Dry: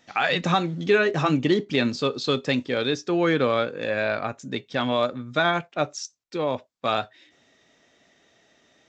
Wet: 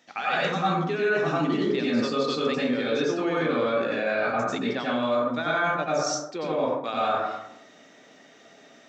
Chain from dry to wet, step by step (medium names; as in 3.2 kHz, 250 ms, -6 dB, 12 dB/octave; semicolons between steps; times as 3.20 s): high-pass 200 Hz 12 dB/octave; reverberation RT60 0.80 s, pre-delay 83 ms, DRR -8.5 dB; reverse; compression 4:1, threshold -24 dBFS, peak gain reduction 15.5 dB; reverse